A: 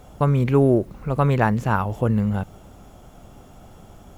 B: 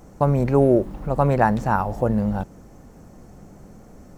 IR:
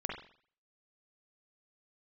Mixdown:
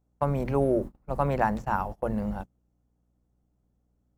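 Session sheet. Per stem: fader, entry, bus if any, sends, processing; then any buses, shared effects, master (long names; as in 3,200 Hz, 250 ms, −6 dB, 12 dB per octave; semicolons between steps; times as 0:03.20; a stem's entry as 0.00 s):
−14.0 dB, 0.00 s, no send, no processing
−4.5 dB, 0.00 s, polarity flipped, no send, parametric band 3,000 Hz −6 dB 2.1 octaves; mains-hum notches 60/120/180/240/300 Hz; mains hum 60 Hz, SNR 16 dB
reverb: not used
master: noise gate −31 dBFS, range −29 dB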